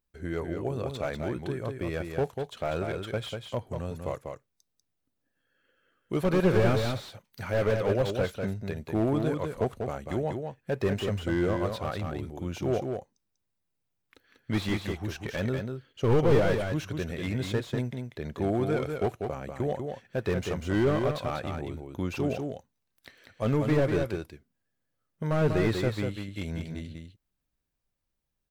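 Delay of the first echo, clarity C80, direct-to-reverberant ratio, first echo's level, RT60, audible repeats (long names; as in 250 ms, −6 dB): 193 ms, no reverb audible, no reverb audible, −5.5 dB, no reverb audible, 1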